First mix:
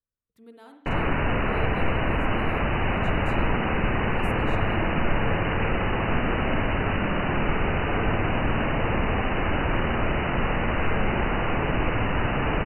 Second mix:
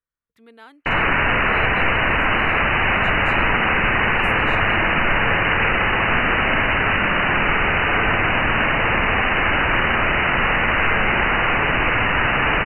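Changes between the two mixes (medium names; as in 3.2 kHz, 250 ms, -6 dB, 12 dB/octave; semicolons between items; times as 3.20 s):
speech: send off; master: add peaking EQ 2 kHz +13.5 dB 2.4 oct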